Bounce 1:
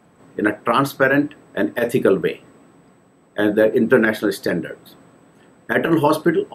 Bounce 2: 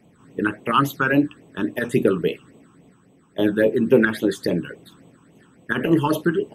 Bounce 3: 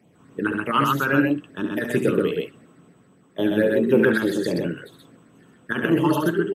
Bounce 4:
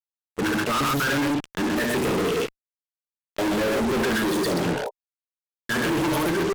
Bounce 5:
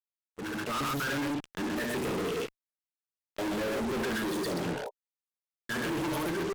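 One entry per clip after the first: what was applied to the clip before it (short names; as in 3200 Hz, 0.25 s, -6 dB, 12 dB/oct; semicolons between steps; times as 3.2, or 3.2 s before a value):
phaser stages 8, 3.6 Hz, lowest notch 570–1600 Hz
HPF 74 Hz; on a send: loudspeakers at several distances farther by 24 m -7 dB, 44 m -2 dB; on the sum: gain -3 dB
fuzz box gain 39 dB, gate -38 dBFS; spectral repair 4.61–4.87, 420–1000 Hz before; gain -8.5 dB
opening faded in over 0.77 s; gain -8.5 dB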